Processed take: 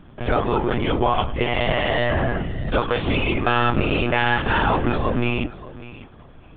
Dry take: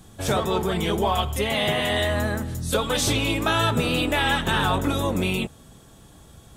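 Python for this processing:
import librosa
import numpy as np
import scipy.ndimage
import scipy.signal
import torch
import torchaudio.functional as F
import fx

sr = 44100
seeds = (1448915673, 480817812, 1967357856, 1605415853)

y = scipy.signal.sosfilt(scipy.signal.butter(6, 3000.0, 'lowpass', fs=sr, output='sos'), x)
y = fx.echo_feedback(y, sr, ms=593, feedback_pct=16, wet_db=-17.0)
y = fx.lpc_monotone(y, sr, seeds[0], pitch_hz=120.0, order=16)
y = y * 10.0 ** (3.0 / 20.0)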